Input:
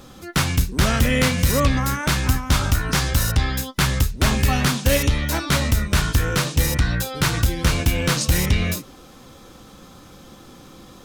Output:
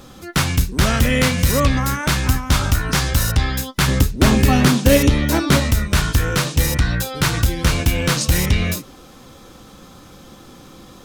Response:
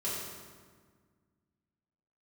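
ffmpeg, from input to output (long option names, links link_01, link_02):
-filter_complex "[0:a]asettb=1/sr,asplit=3[link_01][link_02][link_03];[link_01]atrim=end=3.884[link_04];[link_02]atrim=start=3.88:end=5.6,asetpts=PTS-STARTPTS,afade=type=in:duration=0.004:curve=qsin,afade=type=out:start_time=1.716:duration=0.004:curve=qsin,equalizer=frequency=300:width_type=o:width=1.9:gain=8.5[link_05];[link_03]atrim=start=5.596[link_06];[link_04][link_05]acrossfade=duration=0.004:curve1=hsin:curve2=qsin[link_07];[link_07][link_06]acrossfade=duration=0.004:curve1=qsin:curve2=hsin,volume=2dB"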